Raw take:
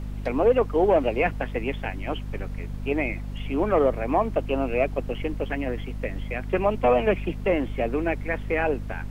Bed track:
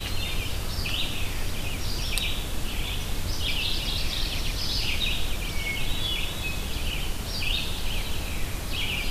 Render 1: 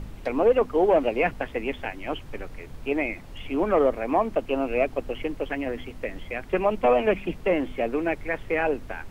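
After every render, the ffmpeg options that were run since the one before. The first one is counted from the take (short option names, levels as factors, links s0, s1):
-af "bandreject=f=50:t=h:w=4,bandreject=f=100:t=h:w=4,bandreject=f=150:t=h:w=4,bandreject=f=200:t=h:w=4,bandreject=f=250:t=h:w=4"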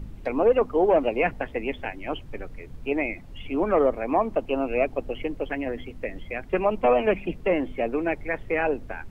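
-af "afftdn=nr=8:nf=-42"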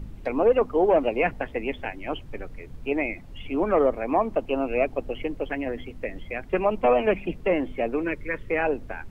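-filter_complex "[0:a]asettb=1/sr,asplit=3[s0][s1][s2];[s0]atrim=end=8.034[s3];[s1]atrim=start=8.03:end=8.5,asetpts=PTS-STARTPTS,afade=t=in:d=0.004:c=qsin,afade=t=out:st=0.466:d=0.004:c=qsin,asuperstop=centerf=740:order=4:qfactor=2[s4];[s2]atrim=start=8.496[s5];[s3][s4]acrossfade=d=0.004:c1=hsin:c2=qsin[s6];[s6][s5]acrossfade=d=0.004:c1=qsin:c2=hsin"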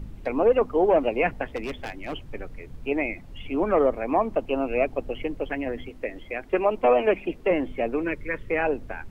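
-filter_complex "[0:a]asplit=3[s0][s1][s2];[s0]afade=t=out:st=1.55:d=0.02[s3];[s1]asoftclip=type=hard:threshold=0.0447,afade=t=in:st=1.55:d=0.02,afade=t=out:st=2.22:d=0.02[s4];[s2]afade=t=in:st=2.22:d=0.02[s5];[s3][s4][s5]amix=inputs=3:normalize=0,asettb=1/sr,asplit=3[s6][s7][s8];[s6]atrim=end=5.894[s9];[s7]atrim=start=5.89:end=7.51,asetpts=PTS-STARTPTS,afade=t=in:d=0.004:c=qsin,afade=t=out:st=1.616:d=0.004:c=qsin,lowshelf=f=230:t=q:w=1.5:g=-6[s10];[s8]atrim=start=7.506[s11];[s9][s10]acrossfade=d=0.004:c1=hsin:c2=qsin[s12];[s12][s11]acrossfade=d=0.004:c1=qsin:c2=hsin"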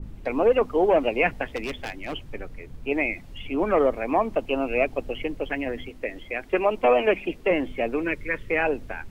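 -af "adynamicequalizer=threshold=0.0126:dfrequency=1800:dqfactor=0.7:tfrequency=1800:tqfactor=0.7:attack=5:release=100:ratio=0.375:range=3:mode=boostabove:tftype=highshelf"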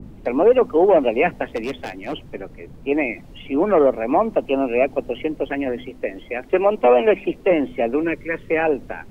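-filter_complex "[0:a]acrossover=split=130|910[s0][s1][s2];[s0]alimiter=level_in=4.73:limit=0.0631:level=0:latency=1:release=99,volume=0.211[s3];[s1]acontrast=67[s4];[s3][s4][s2]amix=inputs=3:normalize=0"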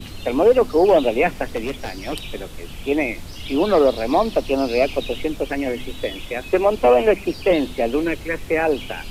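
-filter_complex "[1:a]volume=0.473[s0];[0:a][s0]amix=inputs=2:normalize=0"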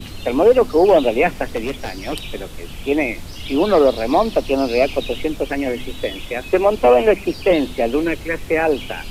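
-af "volume=1.26"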